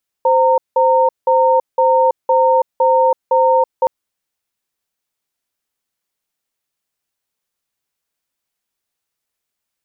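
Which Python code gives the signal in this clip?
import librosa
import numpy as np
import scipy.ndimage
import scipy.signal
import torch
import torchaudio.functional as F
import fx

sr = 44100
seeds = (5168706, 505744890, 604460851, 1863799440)

y = fx.cadence(sr, length_s=3.62, low_hz=520.0, high_hz=919.0, on_s=0.33, off_s=0.18, level_db=-12.0)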